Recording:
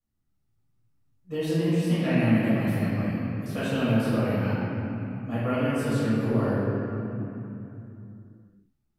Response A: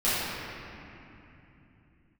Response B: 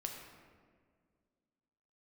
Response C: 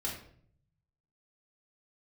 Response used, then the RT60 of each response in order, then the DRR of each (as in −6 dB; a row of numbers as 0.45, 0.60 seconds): A; 3.0, 1.9, 0.60 seconds; −13.5, 1.5, −4.5 decibels